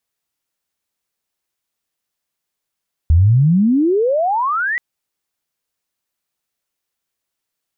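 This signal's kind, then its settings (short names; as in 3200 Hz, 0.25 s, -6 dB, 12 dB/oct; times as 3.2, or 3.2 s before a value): chirp logarithmic 75 Hz -> 2000 Hz -7 dBFS -> -16.5 dBFS 1.68 s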